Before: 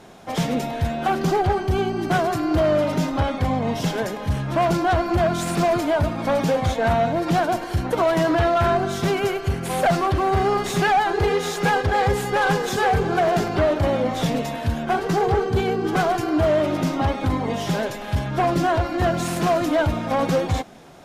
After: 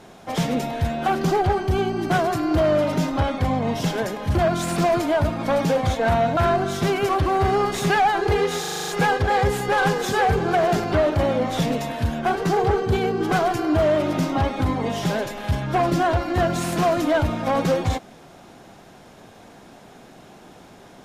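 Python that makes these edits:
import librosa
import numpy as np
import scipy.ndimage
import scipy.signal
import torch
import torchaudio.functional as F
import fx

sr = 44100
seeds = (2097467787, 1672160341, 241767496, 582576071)

y = fx.edit(x, sr, fx.cut(start_s=4.35, length_s=0.79),
    fx.cut(start_s=7.16, length_s=1.42),
    fx.cut(start_s=9.3, length_s=0.71),
    fx.stutter(start_s=11.52, slice_s=0.04, count=8), tone=tone)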